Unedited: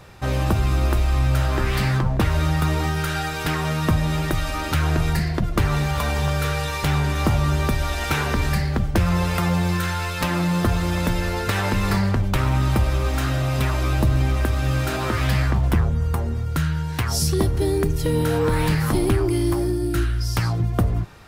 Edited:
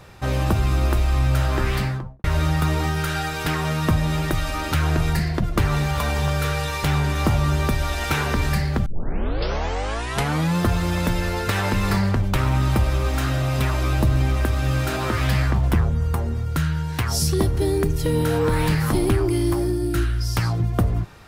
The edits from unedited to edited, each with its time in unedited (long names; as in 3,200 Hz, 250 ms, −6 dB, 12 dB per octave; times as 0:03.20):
0:01.67–0:02.24: fade out and dull
0:08.86: tape start 1.70 s